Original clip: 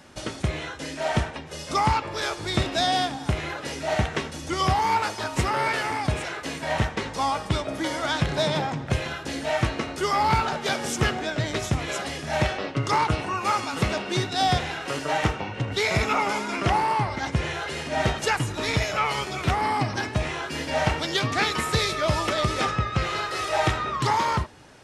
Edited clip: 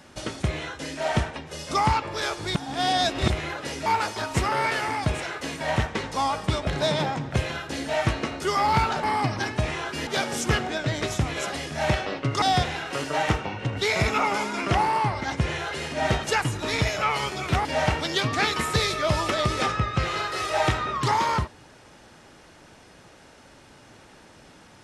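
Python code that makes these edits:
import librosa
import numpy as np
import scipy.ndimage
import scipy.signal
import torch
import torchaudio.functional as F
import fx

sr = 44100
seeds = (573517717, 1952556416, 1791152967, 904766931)

y = fx.edit(x, sr, fx.reverse_span(start_s=2.55, length_s=0.75),
    fx.cut(start_s=3.86, length_s=1.02),
    fx.cut(start_s=7.69, length_s=0.54),
    fx.cut(start_s=12.94, length_s=1.43),
    fx.move(start_s=19.6, length_s=1.04, to_s=10.59), tone=tone)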